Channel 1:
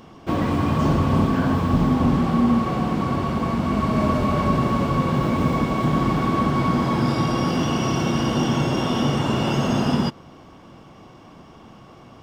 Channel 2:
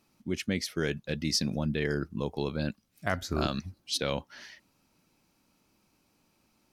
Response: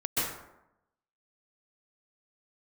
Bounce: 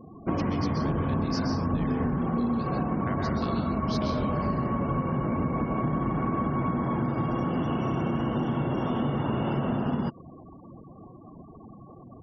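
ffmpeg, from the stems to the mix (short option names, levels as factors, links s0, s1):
-filter_complex "[0:a]acrossover=split=2800[s0][s1];[s1]acompressor=threshold=0.00447:ratio=4:attack=1:release=60[s2];[s0][s2]amix=inputs=2:normalize=0,volume=1[s3];[1:a]equalizer=f=4900:t=o:w=0.74:g=9,acompressor=threshold=0.00708:ratio=1.5,volume=1.06,asplit=2[s4][s5];[s5]volume=0.631[s6];[2:a]atrim=start_sample=2205[s7];[s6][s7]afir=irnorm=-1:irlink=0[s8];[s3][s4][s8]amix=inputs=3:normalize=0,highshelf=f=3000:g=-8.5,afftfilt=real='re*gte(hypot(re,im),0.0126)':imag='im*gte(hypot(re,im),0.0126)':win_size=1024:overlap=0.75,acompressor=threshold=0.0631:ratio=6"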